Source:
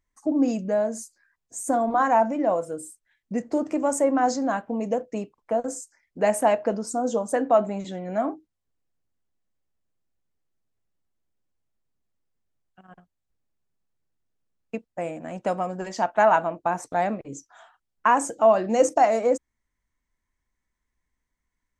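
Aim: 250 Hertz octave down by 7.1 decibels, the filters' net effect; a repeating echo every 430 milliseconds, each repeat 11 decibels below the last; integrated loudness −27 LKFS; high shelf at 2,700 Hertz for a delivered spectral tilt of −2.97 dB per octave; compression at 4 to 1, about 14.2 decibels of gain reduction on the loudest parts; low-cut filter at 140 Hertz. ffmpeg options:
ffmpeg -i in.wav -af "highpass=140,equalizer=frequency=250:width_type=o:gain=-8,highshelf=frequency=2700:gain=6.5,acompressor=threshold=-31dB:ratio=4,aecho=1:1:430|860|1290:0.282|0.0789|0.0221,volume=7.5dB" out.wav

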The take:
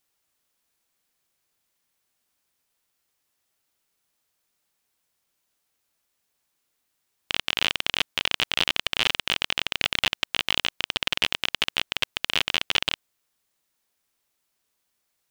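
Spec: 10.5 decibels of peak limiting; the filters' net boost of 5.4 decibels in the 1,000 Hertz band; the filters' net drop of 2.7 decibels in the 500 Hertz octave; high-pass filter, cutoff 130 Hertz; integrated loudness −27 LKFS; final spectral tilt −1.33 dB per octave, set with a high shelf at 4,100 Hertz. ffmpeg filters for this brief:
ffmpeg -i in.wav -af "highpass=130,equalizer=frequency=500:width_type=o:gain=-6.5,equalizer=frequency=1000:width_type=o:gain=8,highshelf=frequency=4100:gain=5,volume=4.5dB,alimiter=limit=-7dB:level=0:latency=1" out.wav

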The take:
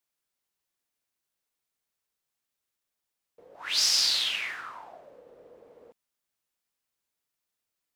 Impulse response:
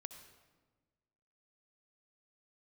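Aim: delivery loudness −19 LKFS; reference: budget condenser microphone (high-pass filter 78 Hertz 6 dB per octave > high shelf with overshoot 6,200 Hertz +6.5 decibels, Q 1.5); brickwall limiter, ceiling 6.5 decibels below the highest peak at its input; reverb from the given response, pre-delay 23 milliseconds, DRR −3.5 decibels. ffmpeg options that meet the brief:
-filter_complex "[0:a]alimiter=limit=-18dB:level=0:latency=1,asplit=2[link_01][link_02];[1:a]atrim=start_sample=2205,adelay=23[link_03];[link_02][link_03]afir=irnorm=-1:irlink=0,volume=8dB[link_04];[link_01][link_04]amix=inputs=2:normalize=0,highpass=frequency=78:poles=1,highshelf=frequency=6200:width_type=q:width=1.5:gain=6.5,volume=4dB"

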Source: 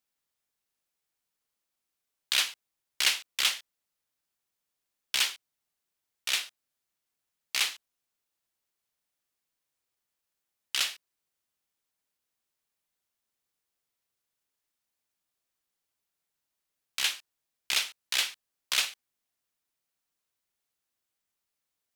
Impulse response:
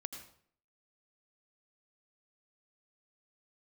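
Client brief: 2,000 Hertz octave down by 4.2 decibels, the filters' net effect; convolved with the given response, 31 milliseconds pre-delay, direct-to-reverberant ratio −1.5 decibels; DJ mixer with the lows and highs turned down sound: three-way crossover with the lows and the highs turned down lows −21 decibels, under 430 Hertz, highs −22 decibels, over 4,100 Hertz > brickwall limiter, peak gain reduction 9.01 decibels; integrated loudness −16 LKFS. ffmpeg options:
-filter_complex "[0:a]equalizer=frequency=2000:width_type=o:gain=-4.5,asplit=2[link_01][link_02];[1:a]atrim=start_sample=2205,adelay=31[link_03];[link_02][link_03]afir=irnorm=-1:irlink=0,volume=3.5dB[link_04];[link_01][link_04]amix=inputs=2:normalize=0,acrossover=split=430 4100:gain=0.0891 1 0.0794[link_05][link_06][link_07];[link_05][link_06][link_07]amix=inputs=3:normalize=0,volume=19dB,alimiter=limit=-3.5dB:level=0:latency=1"

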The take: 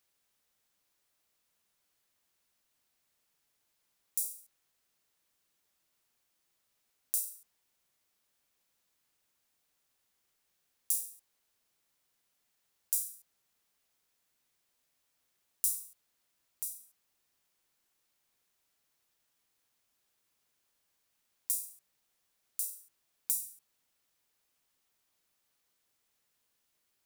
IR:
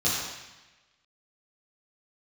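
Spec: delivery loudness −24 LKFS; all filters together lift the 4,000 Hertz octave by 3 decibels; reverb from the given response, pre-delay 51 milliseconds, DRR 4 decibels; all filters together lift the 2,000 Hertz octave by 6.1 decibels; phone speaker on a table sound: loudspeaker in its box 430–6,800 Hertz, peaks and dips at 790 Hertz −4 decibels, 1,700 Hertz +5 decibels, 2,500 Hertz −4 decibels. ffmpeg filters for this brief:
-filter_complex "[0:a]equalizer=frequency=2000:width_type=o:gain=7,equalizer=frequency=4000:width_type=o:gain=4,asplit=2[link_01][link_02];[1:a]atrim=start_sample=2205,adelay=51[link_03];[link_02][link_03]afir=irnorm=-1:irlink=0,volume=-16dB[link_04];[link_01][link_04]amix=inputs=2:normalize=0,highpass=frequency=430:width=0.5412,highpass=frequency=430:width=1.3066,equalizer=frequency=790:width_type=q:width=4:gain=-4,equalizer=frequency=1700:width_type=q:width=4:gain=5,equalizer=frequency=2500:width_type=q:width=4:gain=-4,lowpass=frequency=6800:width=0.5412,lowpass=frequency=6800:width=1.3066,volume=22dB"

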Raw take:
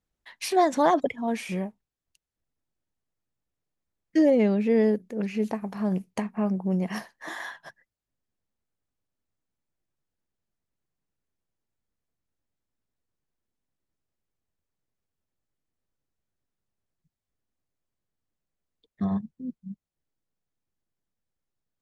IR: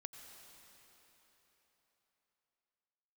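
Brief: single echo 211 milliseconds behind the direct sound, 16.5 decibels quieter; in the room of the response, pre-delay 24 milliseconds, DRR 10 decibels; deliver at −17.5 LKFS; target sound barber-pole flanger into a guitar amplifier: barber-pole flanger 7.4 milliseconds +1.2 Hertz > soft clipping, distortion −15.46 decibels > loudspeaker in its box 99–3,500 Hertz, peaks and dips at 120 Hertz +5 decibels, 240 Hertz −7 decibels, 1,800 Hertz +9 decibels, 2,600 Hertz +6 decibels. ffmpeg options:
-filter_complex "[0:a]aecho=1:1:211:0.15,asplit=2[link_01][link_02];[1:a]atrim=start_sample=2205,adelay=24[link_03];[link_02][link_03]afir=irnorm=-1:irlink=0,volume=-5.5dB[link_04];[link_01][link_04]amix=inputs=2:normalize=0,asplit=2[link_05][link_06];[link_06]adelay=7.4,afreqshift=1.2[link_07];[link_05][link_07]amix=inputs=2:normalize=1,asoftclip=threshold=-18dB,highpass=99,equalizer=frequency=120:width_type=q:width=4:gain=5,equalizer=frequency=240:width_type=q:width=4:gain=-7,equalizer=frequency=1800:width_type=q:width=4:gain=9,equalizer=frequency=2600:width_type=q:width=4:gain=6,lowpass=frequency=3500:width=0.5412,lowpass=frequency=3500:width=1.3066,volume=13.5dB"

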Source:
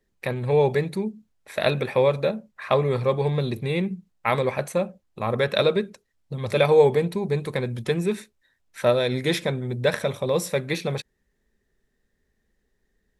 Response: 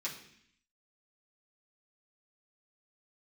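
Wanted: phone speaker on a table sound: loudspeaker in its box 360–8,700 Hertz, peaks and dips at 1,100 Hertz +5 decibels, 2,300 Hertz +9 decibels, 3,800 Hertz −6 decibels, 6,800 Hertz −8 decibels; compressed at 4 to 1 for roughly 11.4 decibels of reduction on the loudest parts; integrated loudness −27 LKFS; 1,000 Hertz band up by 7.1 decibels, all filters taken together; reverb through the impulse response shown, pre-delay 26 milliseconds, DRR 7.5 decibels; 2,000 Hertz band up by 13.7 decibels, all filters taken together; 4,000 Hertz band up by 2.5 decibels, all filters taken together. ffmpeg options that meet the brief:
-filter_complex "[0:a]equalizer=frequency=1000:width_type=o:gain=3.5,equalizer=frequency=2000:width_type=o:gain=8.5,equalizer=frequency=4000:width_type=o:gain=4.5,acompressor=threshold=-25dB:ratio=4,asplit=2[link_01][link_02];[1:a]atrim=start_sample=2205,adelay=26[link_03];[link_02][link_03]afir=irnorm=-1:irlink=0,volume=-9dB[link_04];[link_01][link_04]amix=inputs=2:normalize=0,highpass=frequency=360:width=0.5412,highpass=frequency=360:width=1.3066,equalizer=frequency=1100:width_type=q:width=4:gain=5,equalizer=frequency=2300:width_type=q:width=4:gain=9,equalizer=frequency=3800:width_type=q:width=4:gain=-6,equalizer=frequency=6800:width_type=q:width=4:gain=-8,lowpass=frequency=8700:width=0.5412,lowpass=frequency=8700:width=1.3066"

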